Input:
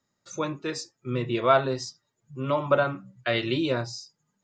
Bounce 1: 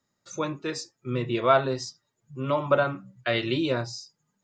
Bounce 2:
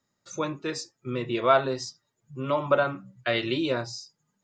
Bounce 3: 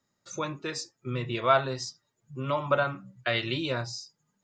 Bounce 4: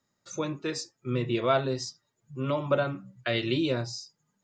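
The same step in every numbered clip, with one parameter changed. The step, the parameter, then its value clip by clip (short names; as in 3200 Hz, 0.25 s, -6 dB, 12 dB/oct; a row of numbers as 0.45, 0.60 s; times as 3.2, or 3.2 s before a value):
dynamic EQ, frequency: 9500, 100, 330, 1100 Hz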